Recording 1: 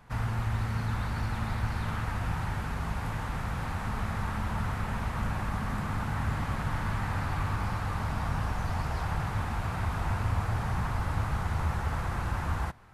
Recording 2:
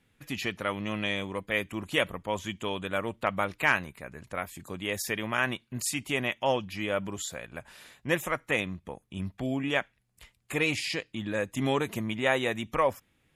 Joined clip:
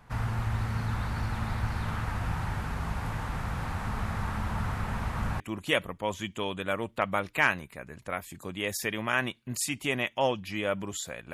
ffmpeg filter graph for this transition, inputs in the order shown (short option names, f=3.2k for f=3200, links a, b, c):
-filter_complex "[0:a]apad=whole_dur=11.33,atrim=end=11.33,atrim=end=5.402[a];[1:a]atrim=start=1.648:end=7.58[b];[a][b]acrossfade=d=0.004:c1=hsin:c2=hsin"